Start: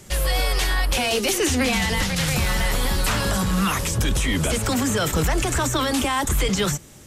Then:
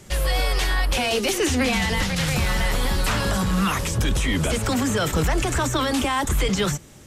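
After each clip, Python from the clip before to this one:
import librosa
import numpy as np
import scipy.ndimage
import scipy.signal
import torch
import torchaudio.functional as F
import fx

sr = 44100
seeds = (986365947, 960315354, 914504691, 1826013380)

y = fx.high_shelf(x, sr, hz=6500.0, db=-5.5)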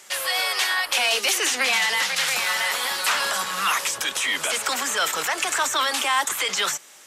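y = scipy.signal.sosfilt(scipy.signal.butter(2, 940.0, 'highpass', fs=sr, output='sos'), x)
y = F.gain(torch.from_numpy(y), 4.5).numpy()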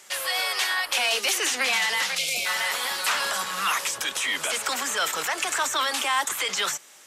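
y = fx.spec_box(x, sr, start_s=2.18, length_s=0.27, low_hz=740.0, high_hz=2100.0, gain_db=-23)
y = F.gain(torch.from_numpy(y), -2.5).numpy()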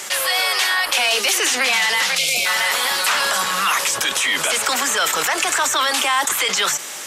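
y = fx.env_flatten(x, sr, amount_pct=50)
y = F.gain(torch.from_numpy(y), 5.0).numpy()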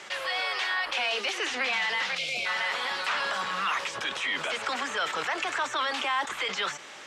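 y = scipy.signal.sosfilt(scipy.signal.butter(2, 3500.0, 'lowpass', fs=sr, output='sos'), x)
y = F.gain(torch.from_numpy(y), -9.0).numpy()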